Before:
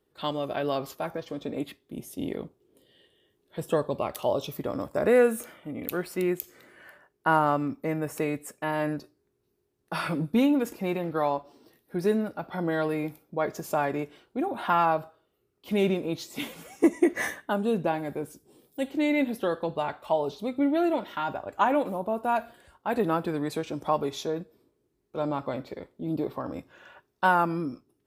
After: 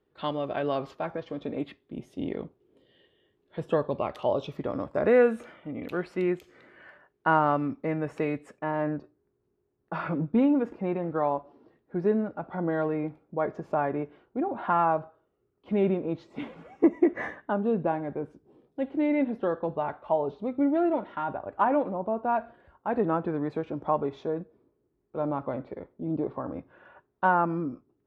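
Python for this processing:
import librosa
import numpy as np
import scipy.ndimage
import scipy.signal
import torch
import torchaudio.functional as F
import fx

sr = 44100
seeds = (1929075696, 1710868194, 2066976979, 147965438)

y = fx.lowpass(x, sr, hz=fx.steps((0.0, 2900.0), (8.59, 1500.0)), slope=12)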